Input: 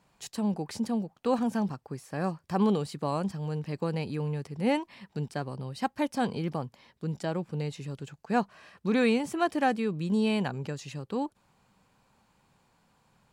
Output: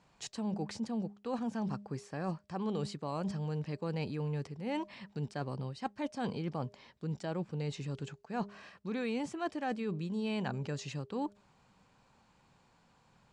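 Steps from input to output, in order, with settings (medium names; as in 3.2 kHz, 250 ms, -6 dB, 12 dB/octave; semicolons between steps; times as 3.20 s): low-pass 7.8 kHz 24 dB/octave; de-hum 203.4 Hz, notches 3; reverse; compression 6:1, threshold -33 dBFS, peak gain reduction 12 dB; reverse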